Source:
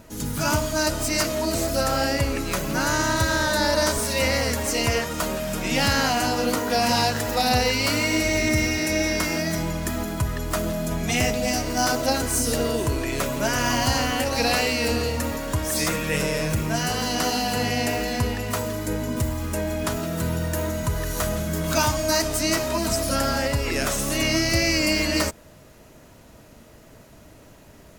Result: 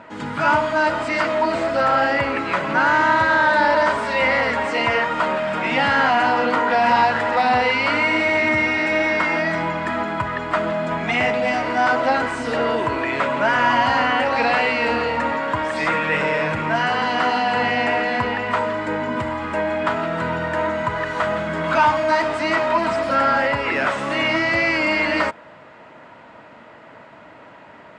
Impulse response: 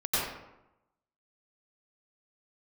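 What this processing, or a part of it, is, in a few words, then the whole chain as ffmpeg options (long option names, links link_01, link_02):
overdrive pedal into a guitar cabinet: -filter_complex "[0:a]asplit=2[link_01][link_02];[link_02]highpass=frequency=720:poles=1,volume=16dB,asoftclip=type=tanh:threshold=-8.5dB[link_03];[link_01][link_03]amix=inputs=2:normalize=0,lowpass=frequency=2000:poles=1,volume=-6dB,highpass=110,equalizer=frequency=400:width_type=q:width=4:gain=-4,equalizer=frequency=930:width_type=q:width=4:gain=6,equalizer=frequency=1400:width_type=q:width=4:gain=4,equalizer=frequency=2000:width_type=q:width=4:gain=4,equalizer=frequency=4000:width_type=q:width=4:gain=-3,lowpass=frequency=4500:width=0.5412,lowpass=frequency=4500:width=1.3066,highshelf=frequency=7000:width_type=q:width=3:gain=6"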